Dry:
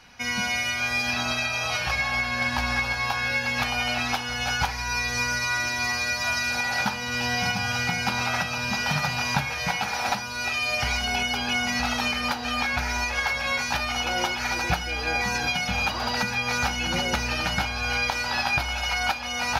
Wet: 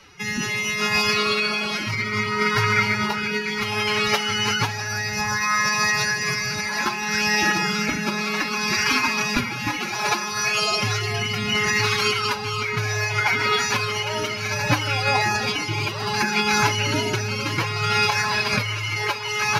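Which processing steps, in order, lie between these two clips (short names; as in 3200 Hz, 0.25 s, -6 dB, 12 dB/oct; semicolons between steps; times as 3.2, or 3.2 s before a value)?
rotary speaker horn 0.65 Hz; narrowing echo 0.156 s, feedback 71%, band-pass 660 Hz, level -14.5 dB; formant-preserving pitch shift +9.5 st; gain +6.5 dB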